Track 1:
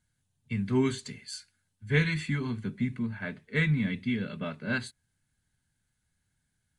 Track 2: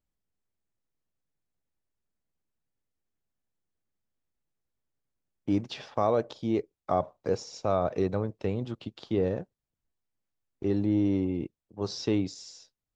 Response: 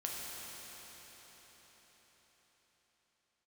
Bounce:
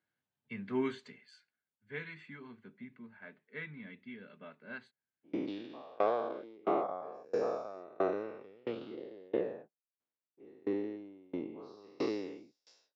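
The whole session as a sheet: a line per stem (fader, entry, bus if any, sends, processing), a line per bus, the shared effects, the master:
0.99 s -3 dB -> 1.55 s -12.5 dB, 0.00 s, no send, none
-4.5 dB, 0.00 s, no send, every event in the spectrogram widened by 480 ms; sawtooth tremolo in dB decaying 1.5 Hz, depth 31 dB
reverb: none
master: saturation -16 dBFS, distortion -23 dB; band-pass 310–2500 Hz

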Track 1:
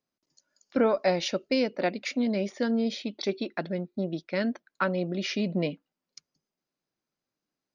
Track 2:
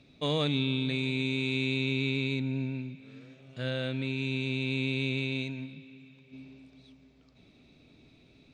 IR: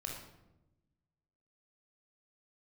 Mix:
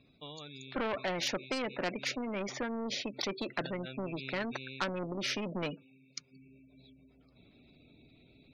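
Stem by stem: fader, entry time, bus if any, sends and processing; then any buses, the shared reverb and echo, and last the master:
-1.0 dB, 0.00 s, no send, treble shelf 4.4 kHz -8 dB
2.62 s -19.5 dB -> 2.95 s -6.5 dB -> 4.26 s -6.5 dB -> 4.94 s -15.5 dB, 0.00 s, no send, endings held to a fixed fall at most 110 dB/s; auto duck -9 dB, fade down 0.30 s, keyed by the first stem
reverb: none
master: spectral gate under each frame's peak -25 dB strong; saturation -21 dBFS, distortion -17 dB; spectrum-flattening compressor 2:1

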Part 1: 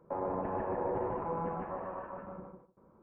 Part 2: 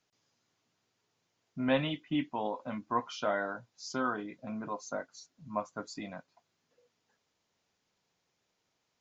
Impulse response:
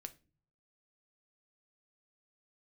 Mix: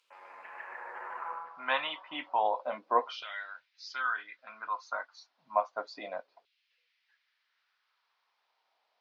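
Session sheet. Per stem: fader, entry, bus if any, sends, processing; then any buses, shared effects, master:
+1.5 dB, 0.00 s, no send, peaking EQ 6.7 kHz +14 dB 1.4 oct; auto duck -16 dB, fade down 0.25 s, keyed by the second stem
+2.0 dB, 0.00 s, no send, steep low-pass 4.8 kHz 36 dB/octave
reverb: none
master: LFO high-pass saw down 0.31 Hz 460–2800 Hz

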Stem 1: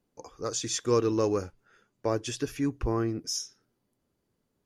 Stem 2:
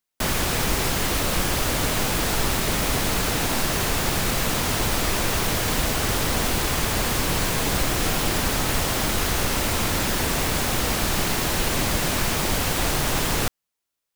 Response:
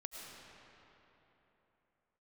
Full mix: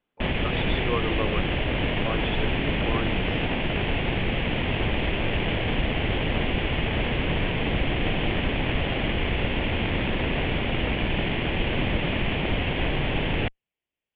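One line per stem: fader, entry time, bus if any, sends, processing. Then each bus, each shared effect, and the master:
-1.0 dB, 0.00 s, no send, tilt shelf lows -8 dB, about 750 Hz
+0.5 dB, 0.00 s, no send, comb filter that takes the minimum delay 0.39 ms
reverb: none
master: steep low-pass 3.5 kHz 72 dB/octave

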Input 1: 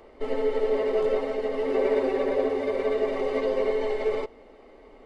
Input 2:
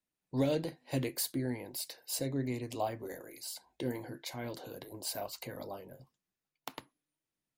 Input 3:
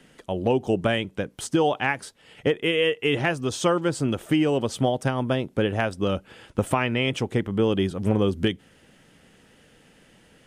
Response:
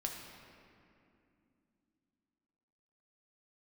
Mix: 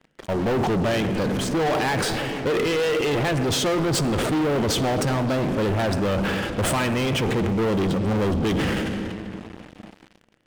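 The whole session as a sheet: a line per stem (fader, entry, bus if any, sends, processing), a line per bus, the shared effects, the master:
-13.5 dB, 0.95 s, bus A, no send, none
-0.5 dB, 0.00 s, bus A, no send, steep low-pass 4.5 kHz
-13.0 dB, 0.00 s, no bus, send -6 dB, treble shelf 4.4 kHz -10.5 dB; decay stretcher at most 50 dB/s
bus A: 0.0 dB, saturation -39 dBFS, distortion -7 dB; peak limiter -48 dBFS, peak gain reduction 9 dB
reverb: on, RT60 2.6 s, pre-delay 5 ms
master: treble shelf 9.8 kHz -10 dB; waveshaping leveller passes 5; transient shaper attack 0 dB, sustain +6 dB

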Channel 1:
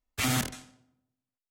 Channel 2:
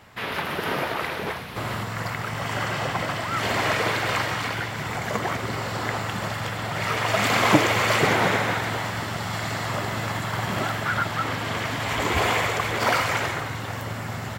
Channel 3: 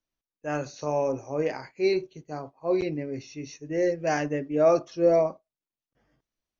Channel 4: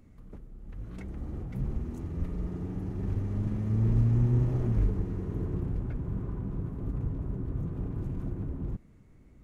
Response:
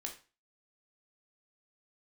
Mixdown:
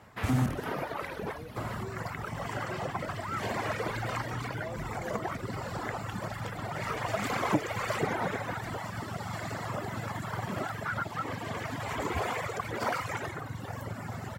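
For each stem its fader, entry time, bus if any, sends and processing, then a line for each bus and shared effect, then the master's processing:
+2.0 dB, 0.05 s, no send, tilt EQ -3 dB/octave
-2.0 dB, 0.00 s, no send, treble shelf 11 kHz -7 dB; reverb removal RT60 1.4 s
-20.0 dB, 0.00 s, no send, none
-13.5 dB, 0.00 s, no send, none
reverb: none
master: high-pass 57 Hz; peaking EQ 3.3 kHz -7.5 dB 1.8 oct; compression 1.5:1, threshold -34 dBFS, peak gain reduction 7.5 dB

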